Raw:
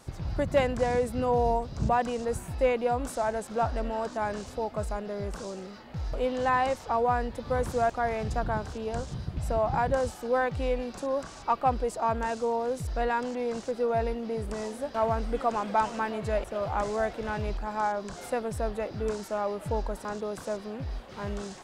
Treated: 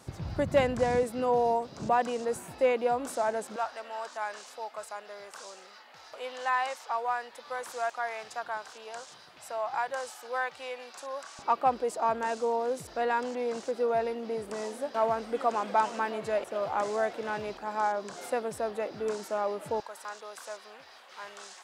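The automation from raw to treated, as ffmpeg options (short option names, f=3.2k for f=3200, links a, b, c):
-af "asetnsamples=n=441:p=0,asendcmd='1.03 highpass f 250;3.56 highpass f 910;11.39 highpass f 270;19.8 highpass f 980',highpass=84"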